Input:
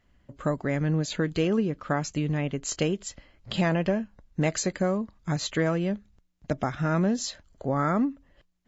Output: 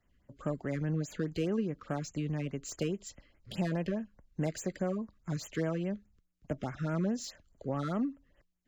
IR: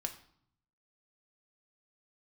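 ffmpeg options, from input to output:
-filter_complex "[0:a]acrossover=split=220|670[link_01][link_02][link_03];[link_03]asoftclip=type=tanh:threshold=-30dB[link_04];[link_01][link_02][link_04]amix=inputs=3:normalize=0,afftfilt=real='re*(1-between(b*sr/1024,700*pow(4700/700,0.5+0.5*sin(2*PI*4.8*pts/sr))/1.41,700*pow(4700/700,0.5+0.5*sin(2*PI*4.8*pts/sr))*1.41))':imag='im*(1-between(b*sr/1024,700*pow(4700/700,0.5+0.5*sin(2*PI*4.8*pts/sr))/1.41,700*pow(4700/700,0.5+0.5*sin(2*PI*4.8*pts/sr))*1.41))':win_size=1024:overlap=0.75,volume=-7dB"

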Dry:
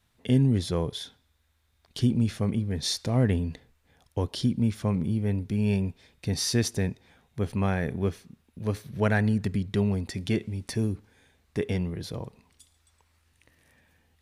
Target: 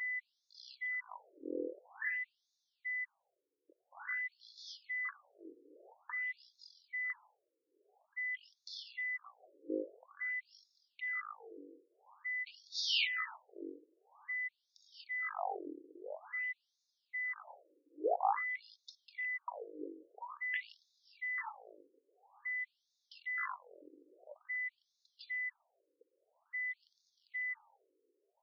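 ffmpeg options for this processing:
ffmpeg -i in.wav -af "aeval=exprs='val(0)+0.0178*sin(2*PI*4000*n/s)':channel_layout=same,asetrate=22050,aresample=44100,afftfilt=real='re*between(b*sr/1024,370*pow(4900/370,0.5+0.5*sin(2*PI*0.49*pts/sr))/1.41,370*pow(4900/370,0.5+0.5*sin(2*PI*0.49*pts/sr))*1.41)':imag='im*between(b*sr/1024,370*pow(4900/370,0.5+0.5*sin(2*PI*0.49*pts/sr))/1.41,370*pow(4900/370,0.5+0.5*sin(2*PI*0.49*pts/sr))*1.41)':win_size=1024:overlap=0.75" out.wav

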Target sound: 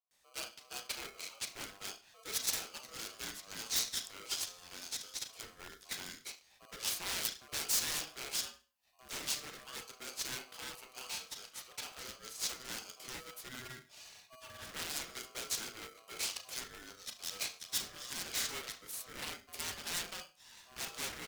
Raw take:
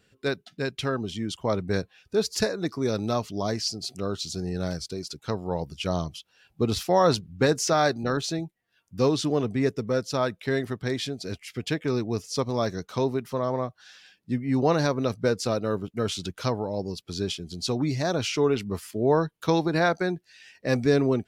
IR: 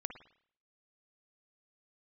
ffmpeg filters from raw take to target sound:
-filter_complex "[0:a]asettb=1/sr,asplit=3[link_01][link_02][link_03];[link_01]atrim=end=13.484[link_04];[link_02]atrim=start=13.48:end=14.6,asetpts=PTS-STARTPTS,afade=type=in:duration=0.004:curve=qsin,afade=type=out:start_time=1.116:duration=0.004:curve=qsin,aecho=1:1:3.9:0.72,atrim=end_sample=49392[link_05];[link_03]atrim=start=14.596[link_06];[link_04][link_05]acrossfade=duration=0.004:curve1=hsin:curve2=qsin[link_07];[link_07][link_06]acrossfade=duration=0.004:curve1=qsin:curve2=hsin,acrossover=split=260[link_08][link_09];[link_09]adelay=110[link_10];[link_08][link_10]amix=inputs=2:normalize=0[link_11];[1:a]atrim=start_sample=2205,asetrate=74970,aresample=44100[link_12];[link_11][link_12]afir=irnorm=-1:irlink=0,aeval=exprs='0.0316*(abs(mod(val(0)/0.0316+3,4)-2)-1)':channel_layout=same,aderivative,asettb=1/sr,asplit=3[link_13][link_14][link_15];[link_13]atrim=end=10.374[link_16];[link_14]atrim=start=10.37:end=11.99,asetpts=PTS-STARTPTS,afade=type=in:duration=0.004:curve=qsin,afade=type=out:start_time=1.616:duration=0.004:curve=qsin,aeval=exprs='(tanh(126*val(0)+0.3)-tanh(0.3))/126':channel_layout=same[link_17];[link_15]atrim=start=11.986[link_18];[link_16][link_17]acrossfade=duration=0.004:curve1=hsin:curve2=qsin[link_19];[link_19][link_18]acrossfade=duration=0.004:curve1=qsin:curve2=hsin,aeval=exprs='val(0)*sgn(sin(2*PI*890*n/s))':channel_layout=same,volume=7dB"

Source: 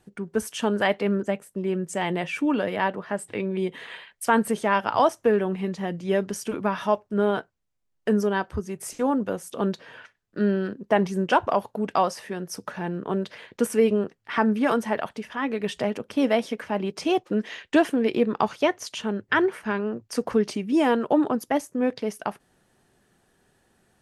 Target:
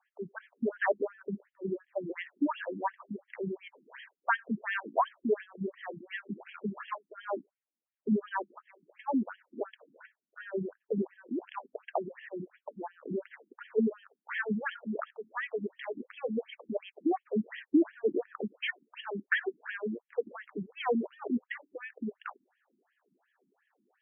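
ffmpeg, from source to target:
ffmpeg -i in.wav -filter_complex "[0:a]aexciter=amount=15.5:drive=2.9:freq=4400,asplit=3[link_01][link_02][link_03];[link_01]afade=type=out:start_time=6.29:duration=0.02[link_04];[link_02]acrusher=bits=3:mode=log:mix=0:aa=0.000001,afade=type=in:start_time=6.29:duration=0.02,afade=type=out:start_time=6.93:duration=0.02[link_05];[link_03]afade=type=in:start_time=6.93:duration=0.02[link_06];[link_04][link_05][link_06]amix=inputs=3:normalize=0,afftfilt=real='re*between(b*sr/1024,240*pow(2400/240,0.5+0.5*sin(2*PI*2.8*pts/sr))/1.41,240*pow(2400/240,0.5+0.5*sin(2*PI*2.8*pts/sr))*1.41)':imag='im*between(b*sr/1024,240*pow(2400/240,0.5+0.5*sin(2*PI*2.8*pts/sr))/1.41,240*pow(2400/240,0.5+0.5*sin(2*PI*2.8*pts/sr))*1.41)':win_size=1024:overlap=0.75,volume=-2.5dB" out.wav

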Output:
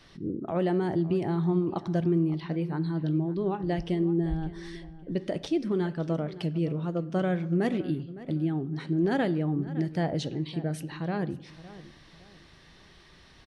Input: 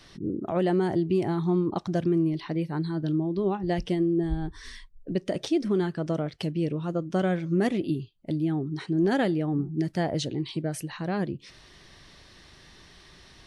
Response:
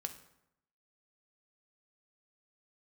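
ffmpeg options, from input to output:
-filter_complex "[0:a]asplit=2[link_01][link_02];[link_02]adelay=561,lowpass=frequency=3800:poles=1,volume=-16.5dB,asplit=2[link_03][link_04];[link_04]adelay=561,lowpass=frequency=3800:poles=1,volume=0.33,asplit=2[link_05][link_06];[link_06]adelay=561,lowpass=frequency=3800:poles=1,volume=0.33[link_07];[link_01][link_03][link_05][link_07]amix=inputs=4:normalize=0,asplit=2[link_08][link_09];[1:a]atrim=start_sample=2205,lowpass=4900[link_10];[link_09][link_10]afir=irnorm=-1:irlink=0,volume=-1.5dB[link_11];[link_08][link_11]amix=inputs=2:normalize=0,volume=-6.5dB"

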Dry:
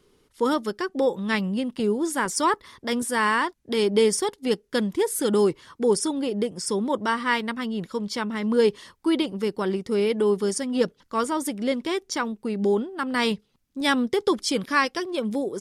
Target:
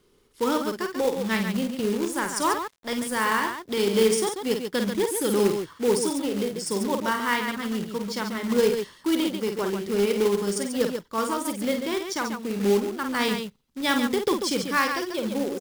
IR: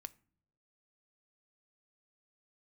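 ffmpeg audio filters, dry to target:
-filter_complex "[0:a]aecho=1:1:49.56|139.9:0.501|0.447,asettb=1/sr,asplit=3[link_01][link_02][link_03];[link_01]atrim=end=1.954[link_04];[link_02]atrim=start=1.95:end=3.6,asetpts=PTS-STARTPTS,afade=type=in:duration=0.004:curve=qsin,afade=type=out:start_time=1.646:duration=0.004:curve=qsin,aeval=exprs='sgn(val(0))*max(abs(val(0))-0.0106,0)':channel_layout=same[link_05];[link_03]atrim=start=3.596[link_06];[link_04][link_05]acrossfade=duration=0.004:curve1=hsin:curve2=qsin[link_07];[link_07][link_06]acrossfade=duration=0.004:curve1=qsin:curve2=hsin,acrusher=bits=3:mode=log:mix=0:aa=0.000001,volume=-2.5dB"

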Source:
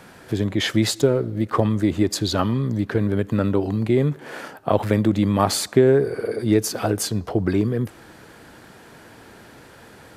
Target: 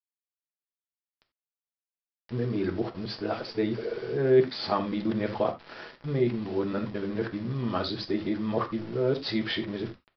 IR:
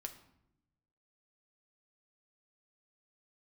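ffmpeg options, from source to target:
-filter_complex "[0:a]areverse,highpass=110,bandreject=frequency=50:width_type=h:width=6,bandreject=frequency=100:width_type=h:width=6,bandreject=frequency=150:width_type=h:width=6,bandreject=frequency=200:width_type=h:width=6,bandreject=frequency=250:width_type=h:width=6,aresample=11025,aeval=exprs='val(0)*gte(abs(val(0)),0.0188)':channel_layout=same,aresample=44100[link_01];[1:a]atrim=start_sample=2205,atrim=end_sample=4410[link_02];[link_01][link_02]afir=irnorm=-1:irlink=0,volume=-3.5dB"

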